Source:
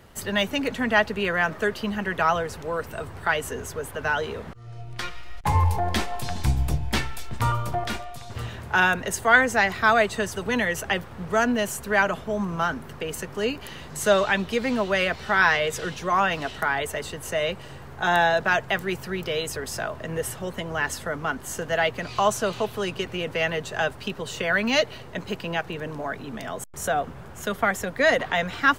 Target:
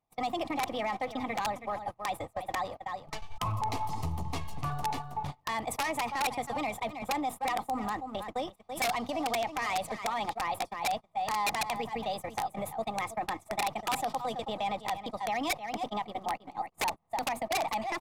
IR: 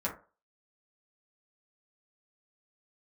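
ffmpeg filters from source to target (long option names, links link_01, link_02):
-filter_complex "[0:a]volume=18dB,asoftclip=hard,volume=-18dB,lowshelf=frequency=460:gain=4,bandreject=frequency=50:width_type=h:width=6,bandreject=frequency=100:width_type=h:width=6,bandreject=frequency=150:width_type=h:width=6,bandreject=frequency=200:width_type=h:width=6,agate=range=-39dB:threshold=-28dB:ratio=16:detection=peak,asplit=2[link_01][link_02];[link_02]aecho=0:1:513:0.15[link_03];[link_01][link_03]amix=inputs=2:normalize=0,acompressor=threshold=-36dB:ratio=3,superequalizer=8b=3.55:9b=2.24:10b=0.447,atempo=1.3,aeval=exprs='(mod(9.44*val(0)+1,2)-1)/9.44':channel_layout=same,alimiter=level_in=0.5dB:limit=-24dB:level=0:latency=1:release=16,volume=-0.5dB,lowpass=frequency=12000:width=0.5412,lowpass=frequency=12000:width=1.3066,asetrate=54243,aresample=44100"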